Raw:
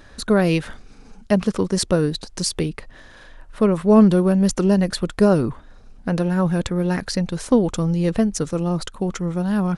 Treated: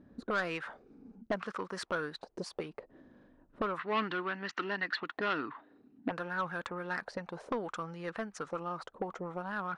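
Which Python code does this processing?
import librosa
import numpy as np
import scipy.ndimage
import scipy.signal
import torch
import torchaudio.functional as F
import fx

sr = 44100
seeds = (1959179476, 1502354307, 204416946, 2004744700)

y = fx.auto_wah(x, sr, base_hz=210.0, top_hz=1400.0, q=2.4, full_db=-17.5, direction='up')
y = 10.0 ** (-25.0 / 20.0) * np.tanh(y / 10.0 ** (-25.0 / 20.0))
y = fx.cabinet(y, sr, low_hz=140.0, low_slope=12, high_hz=5500.0, hz=(190.0, 290.0, 550.0, 1900.0, 2800.0, 4000.0), db=(-4, 9, -9, 9, 8, 7), at=(3.79, 6.11))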